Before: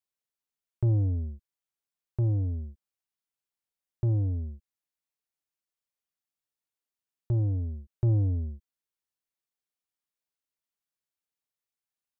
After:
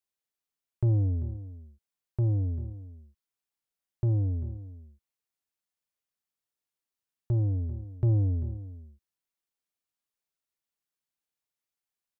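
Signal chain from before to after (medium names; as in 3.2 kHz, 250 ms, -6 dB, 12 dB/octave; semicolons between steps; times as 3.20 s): delay 393 ms -15 dB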